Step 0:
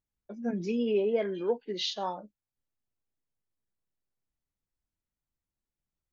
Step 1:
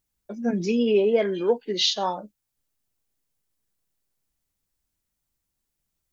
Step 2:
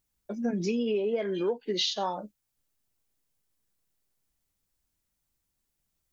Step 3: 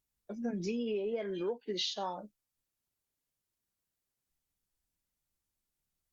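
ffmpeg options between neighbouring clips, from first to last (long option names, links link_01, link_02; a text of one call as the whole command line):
ffmpeg -i in.wav -af "highshelf=frequency=4600:gain=8.5,volume=7dB" out.wav
ffmpeg -i in.wav -af "acompressor=threshold=-25dB:ratio=12" out.wav
ffmpeg -i in.wav -af "volume=-6.5dB" -ar 48000 -c:a libopus -b:a 64k out.opus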